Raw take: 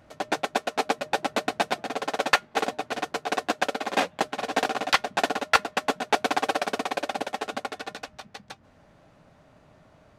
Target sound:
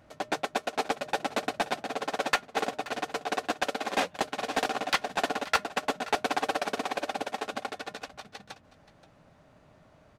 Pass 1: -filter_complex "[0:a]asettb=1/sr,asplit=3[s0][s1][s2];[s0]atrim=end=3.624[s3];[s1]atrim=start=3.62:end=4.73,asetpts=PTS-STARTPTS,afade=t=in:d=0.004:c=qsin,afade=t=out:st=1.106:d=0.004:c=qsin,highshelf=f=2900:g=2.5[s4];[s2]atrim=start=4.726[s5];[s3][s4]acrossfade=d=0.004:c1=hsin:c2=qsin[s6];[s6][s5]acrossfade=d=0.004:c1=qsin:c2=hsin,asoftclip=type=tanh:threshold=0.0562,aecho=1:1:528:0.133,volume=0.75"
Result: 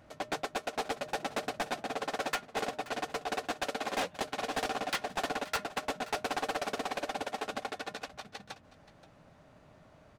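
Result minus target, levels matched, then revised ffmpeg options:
saturation: distortion +10 dB
-filter_complex "[0:a]asettb=1/sr,asplit=3[s0][s1][s2];[s0]atrim=end=3.624[s3];[s1]atrim=start=3.62:end=4.73,asetpts=PTS-STARTPTS,afade=t=in:d=0.004:c=qsin,afade=t=out:st=1.106:d=0.004:c=qsin,highshelf=f=2900:g=2.5[s4];[s2]atrim=start=4.726[s5];[s3][s4]acrossfade=d=0.004:c1=hsin:c2=qsin[s6];[s6][s5]acrossfade=d=0.004:c1=qsin:c2=hsin,asoftclip=type=tanh:threshold=0.211,aecho=1:1:528:0.133,volume=0.75"

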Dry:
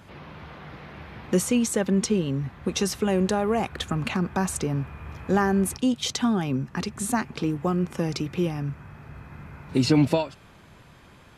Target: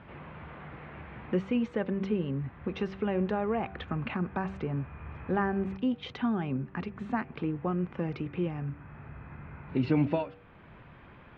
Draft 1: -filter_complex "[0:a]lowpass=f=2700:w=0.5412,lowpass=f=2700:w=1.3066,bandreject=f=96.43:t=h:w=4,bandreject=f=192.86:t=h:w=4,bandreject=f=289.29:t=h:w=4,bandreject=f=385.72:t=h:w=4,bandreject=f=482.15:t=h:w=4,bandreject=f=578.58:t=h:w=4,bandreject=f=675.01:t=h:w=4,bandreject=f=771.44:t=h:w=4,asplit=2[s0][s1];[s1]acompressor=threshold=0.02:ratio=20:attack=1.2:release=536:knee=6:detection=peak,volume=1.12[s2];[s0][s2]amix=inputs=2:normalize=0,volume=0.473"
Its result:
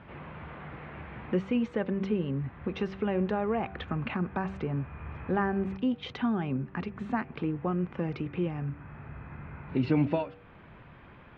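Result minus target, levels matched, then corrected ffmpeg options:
compression: peak gain reduction -6.5 dB
-filter_complex "[0:a]lowpass=f=2700:w=0.5412,lowpass=f=2700:w=1.3066,bandreject=f=96.43:t=h:w=4,bandreject=f=192.86:t=h:w=4,bandreject=f=289.29:t=h:w=4,bandreject=f=385.72:t=h:w=4,bandreject=f=482.15:t=h:w=4,bandreject=f=578.58:t=h:w=4,bandreject=f=675.01:t=h:w=4,bandreject=f=771.44:t=h:w=4,asplit=2[s0][s1];[s1]acompressor=threshold=0.00891:ratio=20:attack=1.2:release=536:knee=6:detection=peak,volume=1.12[s2];[s0][s2]amix=inputs=2:normalize=0,volume=0.473"

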